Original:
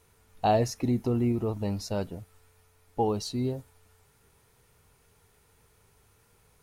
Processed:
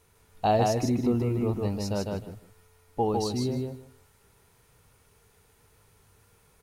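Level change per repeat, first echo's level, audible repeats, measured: -15.0 dB, -3.0 dB, 3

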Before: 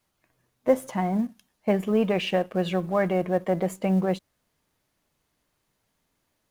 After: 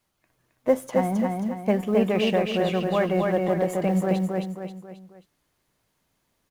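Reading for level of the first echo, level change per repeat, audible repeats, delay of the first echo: -3.0 dB, -7.5 dB, 4, 268 ms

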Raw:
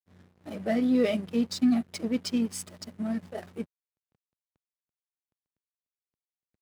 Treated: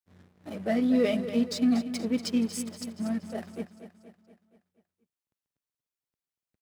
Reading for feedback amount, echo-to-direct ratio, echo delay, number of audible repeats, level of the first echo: 53%, -10.0 dB, 237 ms, 5, -11.5 dB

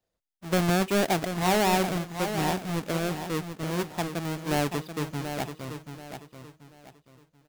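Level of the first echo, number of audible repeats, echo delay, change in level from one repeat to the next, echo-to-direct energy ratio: -8.5 dB, 3, 734 ms, -10.0 dB, -8.0 dB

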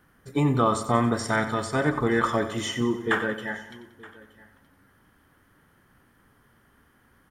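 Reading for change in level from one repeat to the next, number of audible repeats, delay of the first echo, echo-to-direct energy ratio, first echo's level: no regular repeats, 6, 92 ms, -10.5 dB, -12.0 dB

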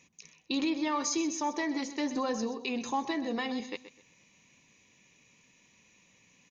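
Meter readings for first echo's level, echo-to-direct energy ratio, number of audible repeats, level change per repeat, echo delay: -13.0 dB, -12.5 dB, 2, -12.0 dB, 127 ms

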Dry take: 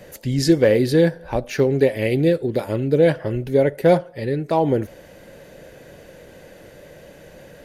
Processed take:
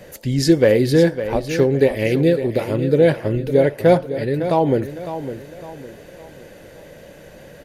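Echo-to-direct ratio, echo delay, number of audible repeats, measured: -10.5 dB, 556 ms, 3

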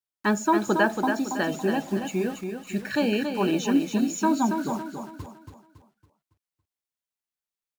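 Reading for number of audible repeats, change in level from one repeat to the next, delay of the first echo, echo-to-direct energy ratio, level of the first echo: 4, -8.0 dB, 279 ms, -5.5 dB, -6.5 dB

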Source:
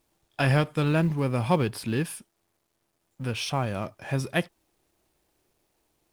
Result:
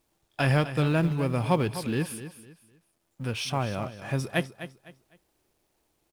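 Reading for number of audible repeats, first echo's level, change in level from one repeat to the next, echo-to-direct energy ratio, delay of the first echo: 3, -12.5 dB, -11.0 dB, -12.0 dB, 253 ms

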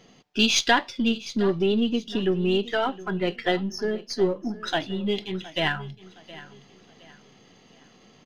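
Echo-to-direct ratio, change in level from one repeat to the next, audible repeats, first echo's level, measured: -17.5 dB, -9.0 dB, 2, -18.0 dB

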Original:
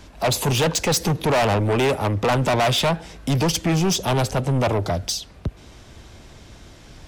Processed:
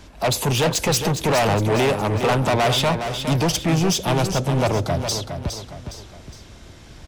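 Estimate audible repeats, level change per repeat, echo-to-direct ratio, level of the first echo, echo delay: 3, -7.0 dB, -7.0 dB, -8.0 dB, 412 ms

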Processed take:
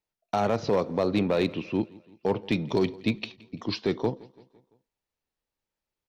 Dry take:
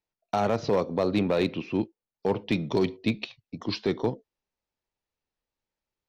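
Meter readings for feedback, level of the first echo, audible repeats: 54%, -23.0 dB, 3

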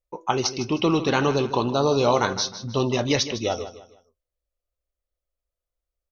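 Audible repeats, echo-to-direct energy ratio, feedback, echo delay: 3, -12.5 dB, 33%, 155 ms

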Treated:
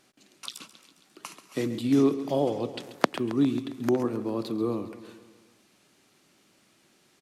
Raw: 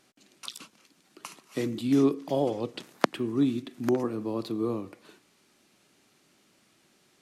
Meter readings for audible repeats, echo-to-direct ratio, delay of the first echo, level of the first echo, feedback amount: 5, -12.0 dB, 135 ms, -14.0 dB, 58%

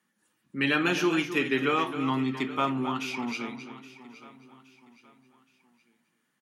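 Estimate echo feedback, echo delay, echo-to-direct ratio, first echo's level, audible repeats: no regular repeats, 266 ms, -10.0 dB, -11.0 dB, 5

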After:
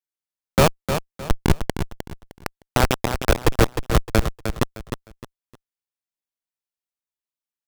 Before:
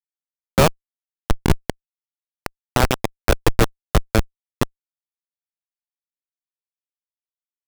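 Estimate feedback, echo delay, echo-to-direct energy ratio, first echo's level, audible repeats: 28%, 307 ms, -7.5 dB, -8.0 dB, 3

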